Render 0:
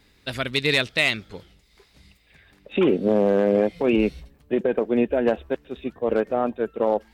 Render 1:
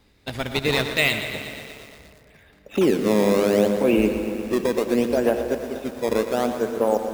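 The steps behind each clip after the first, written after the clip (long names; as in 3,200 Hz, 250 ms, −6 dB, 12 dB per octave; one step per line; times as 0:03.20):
in parallel at −3.5 dB: sample-and-hold swept by an LFO 17×, swing 160% 0.7 Hz
on the sum: convolution reverb RT60 3.2 s, pre-delay 53 ms, DRR 9.5 dB
feedback echo at a low word length 118 ms, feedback 80%, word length 6 bits, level −11 dB
level −4 dB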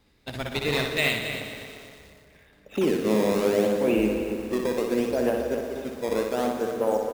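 loudspeakers that aren't time-aligned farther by 21 metres −5 dB, 93 metres −10 dB
level −5 dB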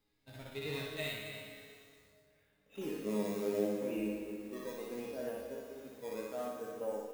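high-shelf EQ 9,800 Hz +8.5 dB
harmonic and percussive parts rebalanced percussive −15 dB
resonators tuned to a chord G#2 sus4, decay 0.24 s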